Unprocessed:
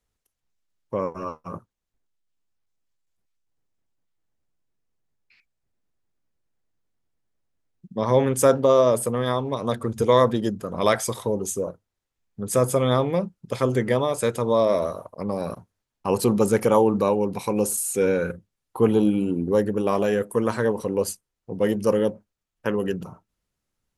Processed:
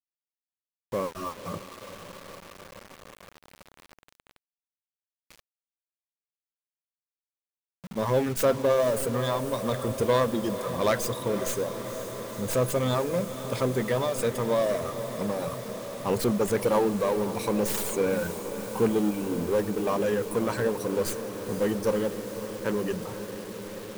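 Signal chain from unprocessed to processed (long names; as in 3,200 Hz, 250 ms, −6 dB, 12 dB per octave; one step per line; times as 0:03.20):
stylus tracing distortion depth 0.11 ms
reverb reduction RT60 1.1 s
power curve on the samples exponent 0.7
feedback delay with all-pass diffusion 507 ms, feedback 79%, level −11.5 dB
bit-depth reduction 6 bits, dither none
level −7.5 dB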